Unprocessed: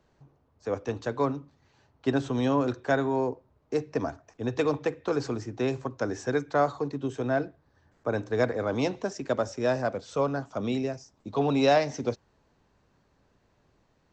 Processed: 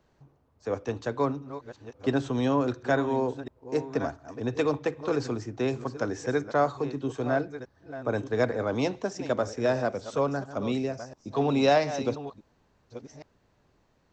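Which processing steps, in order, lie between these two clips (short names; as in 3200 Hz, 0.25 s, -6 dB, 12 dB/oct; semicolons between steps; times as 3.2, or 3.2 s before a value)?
reverse delay 0.696 s, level -12.5 dB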